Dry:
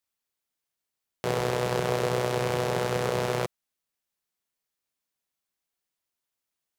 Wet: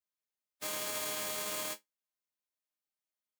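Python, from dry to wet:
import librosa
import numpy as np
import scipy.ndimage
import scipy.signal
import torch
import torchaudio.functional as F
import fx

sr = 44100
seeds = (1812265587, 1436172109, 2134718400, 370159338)

y = fx.spec_flatten(x, sr, power=0.24)
y = scipy.signal.sosfilt(scipy.signal.butter(4, 71.0, 'highpass', fs=sr, output='sos'), y)
y = fx.resonator_bank(y, sr, root=56, chord='major', decay_s=0.27)
y = fx.stretch_vocoder(y, sr, factor=0.5)
y = y * librosa.db_to_amplitude(7.5)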